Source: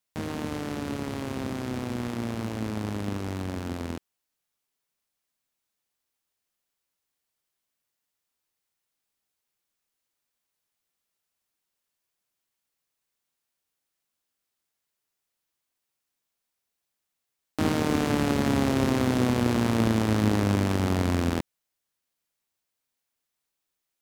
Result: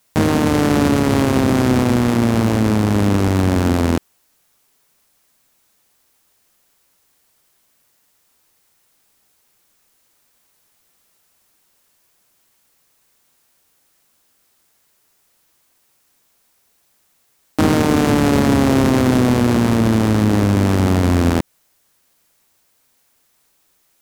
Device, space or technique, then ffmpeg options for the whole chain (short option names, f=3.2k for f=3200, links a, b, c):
mastering chain: -af "equalizer=f=3.2k:t=o:w=1.7:g=-3,acompressor=threshold=-27dB:ratio=2.5,asoftclip=type=tanh:threshold=-17dB,alimiter=level_in=26.5dB:limit=-1dB:release=50:level=0:latency=1,volume=-4.5dB"